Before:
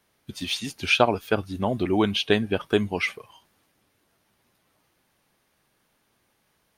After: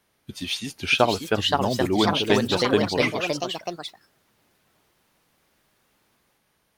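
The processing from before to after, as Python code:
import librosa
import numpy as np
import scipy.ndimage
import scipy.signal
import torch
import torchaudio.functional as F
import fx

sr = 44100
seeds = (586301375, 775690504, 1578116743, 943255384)

y = fx.echo_pitch(x, sr, ms=683, semitones=3, count=3, db_per_echo=-3.0)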